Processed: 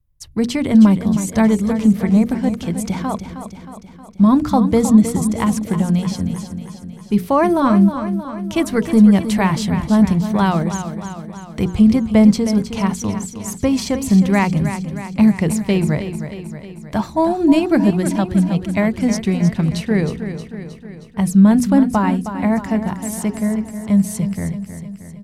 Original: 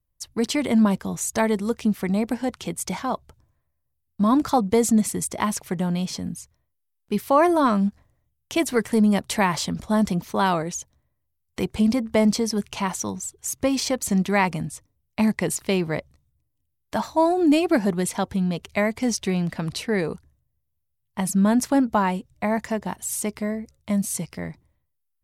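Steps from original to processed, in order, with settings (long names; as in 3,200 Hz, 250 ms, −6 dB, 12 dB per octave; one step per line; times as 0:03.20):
bass and treble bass +12 dB, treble −3 dB
mains-hum notches 60/120/180/240/300/360/420/480 Hz
on a send: repeating echo 314 ms, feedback 59%, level −10 dB
on the sum: level +1.5 dB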